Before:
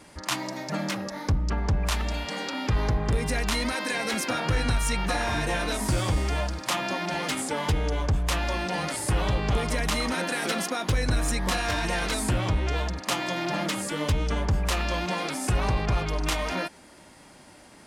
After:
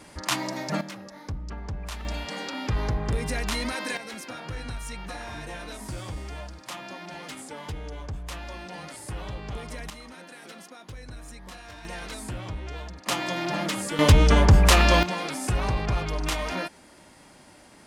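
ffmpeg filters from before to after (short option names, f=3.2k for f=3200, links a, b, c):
-af "asetnsamples=n=441:p=0,asendcmd='0.81 volume volume -9.5dB;2.05 volume volume -2dB;3.97 volume volume -10.5dB;9.9 volume volume -17dB;11.85 volume volume -9.5dB;13.06 volume volume 0dB;13.99 volume volume 9.5dB;15.03 volume volume -1dB',volume=2dB"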